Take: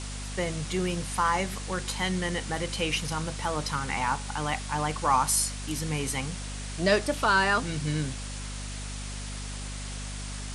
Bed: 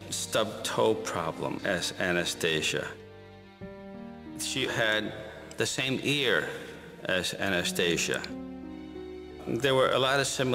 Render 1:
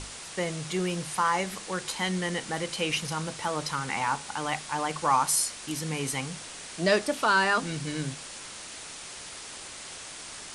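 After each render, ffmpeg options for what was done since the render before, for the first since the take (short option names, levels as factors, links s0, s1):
-af "bandreject=f=50:t=h:w=6,bandreject=f=100:t=h:w=6,bandreject=f=150:t=h:w=6,bandreject=f=200:t=h:w=6,bandreject=f=250:t=h:w=6"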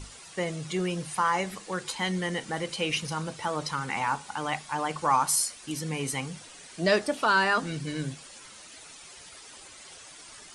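-af "afftdn=nr=10:nf=-42"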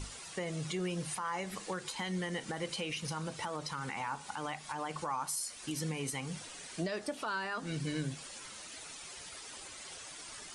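-af "acompressor=threshold=0.0224:ratio=3,alimiter=level_in=1.33:limit=0.0631:level=0:latency=1:release=126,volume=0.75"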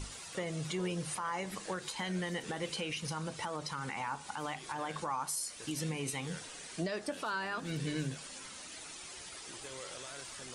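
-filter_complex "[1:a]volume=0.0596[s0];[0:a][s0]amix=inputs=2:normalize=0"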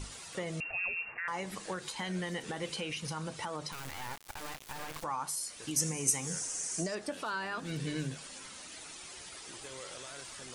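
-filter_complex "[0:a]asettb=1/sr,asplit=3[s0][s1][s2];[s0]atrim=end=0.604[s3];[s1]atrim=start=0.6:end=1.28,asetpts=PTS-STARTPTS,afade=t=in:d=0.004:c=qsin,afade=t=out:st=0.676:d=0.004:c=qsin,lowpass=f=2500:t=q:w=0.5098,lowpass=f=2500:t=q:w=0.6013,lowpass=f=2500:t=q:w=0.9,lowpass=f=2500:t=q:w=2.563,afreqshift=-2900[s4];[s2]atrim=start=1.276[s5];[s3][s4]acrossfade=d=0.004:c1=hsin:c2=qsin[s6];[s6][s5]acrossfade=d=0.004:c1=qsin:c2=hsin,asettb=1/sr,asplit=3[s7][s8][s9];[s7]atrim=end=3.724[s10];[s8]atrim=start=3.72:end=5.04,asetpts=PTS-STARTPTS,afade=t=in:d=0.004:c=qsin,afade=t=out:st=1.316:d=0.004:c=qsin,acrusher=bits=4:dc=4:mix=0:aa=0.000001[s11];[s9]atrim=start=5.036[s12];[s10][s11]acrossfade=d=0.004:c1=hsin:c2=qsin[s13];[s13][s12]acrossfade=d=0.004:c1=qsin:c2=hsin,asettb=1/sr,asplit=3[s14][s15][s16];[s14]atrim=end=5.764[s17];[s15]atrim=start=5.76:end=6.95,asetpts=PTS-STARTPTS,afade=t=in:d=0.004:c=qsin,afade=t=out:st=1.186:d=0.004:c=qsin,highshelf=f=4900:t=q:w=3:g=9[s18];[s16]atrim=start=6.946[s19];[s17][s18]acrossfade=d=0.004:c1=hsin:c2=qsin[s20];[s20][s19]acrossfade=d=0.004:c1=qsin:c2=hsin"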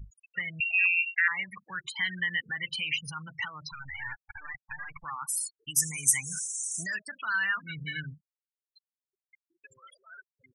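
-af "afftfilt=real='re*gte(hypot(re,im),0.0178)':imag='im*gte(hypot(re,im),0.0178)':win_size=1024:overlap=0.75,firequalizer=gain_entry='entry(120,0);entry(310,-16);entry(500,-20);entry(1000,-3);entry(1700,15);entry(5400,-1);entry(7700,6);entry(15000,13)':delay=0.05:min_phase=1"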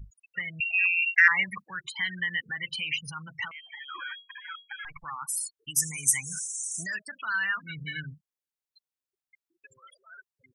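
-filter_complex "[0:a]asettb=1/sr,asplit=3[s0][s1][s2];[s0]atrim=end=1.024[s3];[s1]atrim=start=1.02:end=1.62,asetpts=PTS-STARTPTS,afade=t=in:d=0.004:c=qsin,afade=t=out:st=0.596:d=0.004:c=qsin,acontrast=89[s4];[s2]atrim=start=1.616[s5];[s3][s4]acrossfade=d=0.004:c1=hsin:c2=qsin[s6];[s6][s5]acrossfade=d=0.004:c1=qsin:c2=hsin,asettb=1/sr,asplit=3[s7][s8][s9];[s7]atrim=end=3.514[s10];[s8]atrim=start=3.51:end=4.85,asetpts=PTS-STARTPTS,afade=t=in:d=0.004:c=qsin,afade=t=out:st=1.336:d=0.004:c=qsin,lowpass=f=2800:t=q:w=0.5098,lowpass=f=2800:t=q:w=0.6013,lowpass=f=2800:t=q:w=0.9,lowpass=f=2800:t=q:w=2.563,afreqshift=-3300[s11];[s9]atrim=start=4.846[s12];[s10][s11]acrossfade=d=0.004:c1=hsin:c2=qsin[s13];[s13][s12]acrossfade=d=0.004:c1=qsin:c2=hsin"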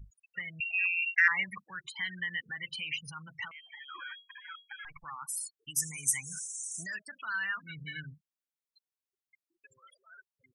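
-af "volume=0.531"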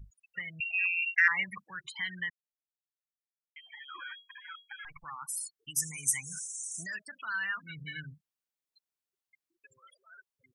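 -filter_complex "[0:a]asplit=3[s0][s1][s2];[s0]atrim=end=2.3,asetpts=PTS-STARTPTS,afade=t=out:st=2.296:d=0.004:c=hsin[s3];[s1]atrim=start=2.3:end=3.56,asetpts=PTS-STARTPTS,volume=0[s4];[s2]atrim=start=3.56,asetpts=PTS-STARTPTS,afade=t=in:d=0.004:c=hsin[s5];[s3][s4][s5]concat=n=3:v=0:a=1"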